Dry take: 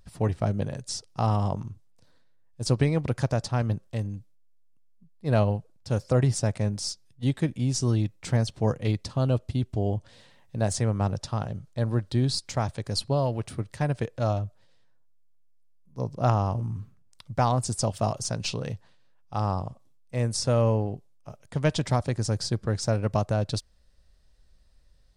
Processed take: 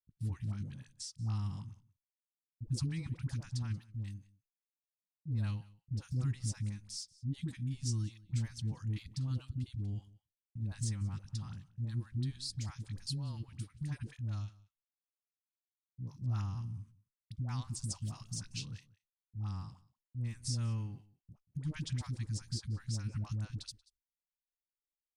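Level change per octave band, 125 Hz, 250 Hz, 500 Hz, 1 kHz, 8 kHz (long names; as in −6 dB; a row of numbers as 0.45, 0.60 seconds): −10.0, −14.0, −32.0, −24.5, −10.5 decibels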